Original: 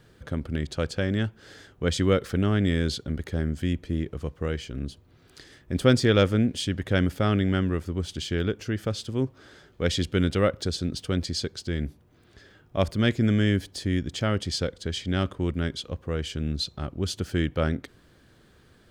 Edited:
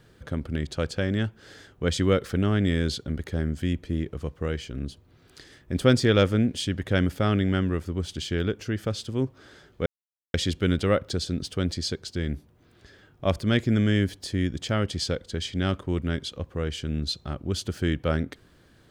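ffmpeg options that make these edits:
ffmpeg -i in.wav -filter_complex "[0:a]asplit=2[link_01][link_02];[link_01]atrim=end=9.86,asetpts=PTS-STARTPTS,afade=type=out:start_time=9.856:duration=0.004:curve=hsin,apad=pad_dur=0.48[link_03];[link_02]atrim=start=9.86,asetpts=PTS-STARTPTS,afade=type=in:duration=0.004:curve=hsin[link_04];[link_03][link_04]concat=n=2:v=0:a=1" out.wav

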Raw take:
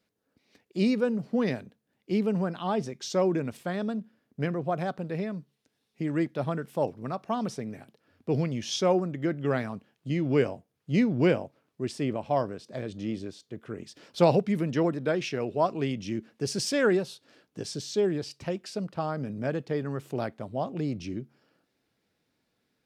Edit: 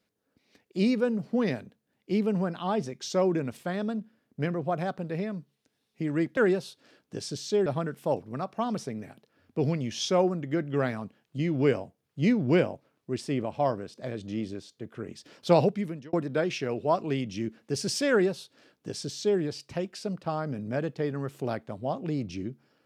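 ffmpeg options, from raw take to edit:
ffmpeg -i in.wav -filter_complex "[0:a]asplit=4[link_01][link_02][link_03][link_04];[link_01]atrim=end=6.372[link_05];[link_02]atrim=start=16.808:end=18.102[link_06];[link_03]atrim=start=6.368:end=14.84,asetpts=PTS-STARTPTS,afade=type=out:start_time=7.972:duration=0.5[link_07];[link_04]atrim=start=14.84,asetpts=PTS-STARTPTS,afade=type=in:duration=0.004:curve=hsin[link_08];[link_05][link_06]acrossfade=duration=0.004:curve1=hsin:curve2=hsin[link_09];[link_07][link_08]concat=n=2:v=0:a=1[link_10];[link_09][link_10]acrossfade=duration=0.004:curve1=hsin:curve2=hsin" out.wav

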